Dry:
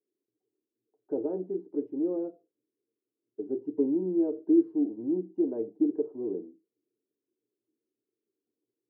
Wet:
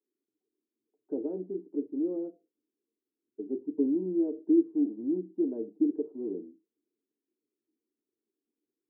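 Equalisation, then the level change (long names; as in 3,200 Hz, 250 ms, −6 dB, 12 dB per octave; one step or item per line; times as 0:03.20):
resonant band-pass 230 Hz, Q 1.9
spectral tilt +3.5 dB per octave
+9.0 dB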